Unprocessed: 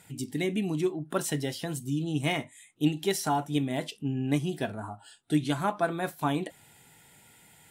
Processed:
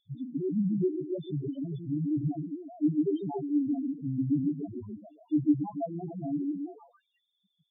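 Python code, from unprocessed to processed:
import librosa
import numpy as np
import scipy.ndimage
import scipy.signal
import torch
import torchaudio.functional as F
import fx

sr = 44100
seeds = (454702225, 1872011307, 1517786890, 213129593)

p1 = fx.freq_compress(x, sr, knee_hz=2600.0, ratio=4.0)
p2 = p1 + fx.echo_stepped(p1, sr, ms=140, hz=240.0, octaves=0.7, feedback_pct=70, wet_db=-0.5, dry=0)
p3 = fx.spec_topn(p2, sr, count=2)
p4 = fx.tilt_shelf(p3, sr, db=10.0, hz=800.0)
y = p4 * 10.0 ** (-6.0 / 20.0)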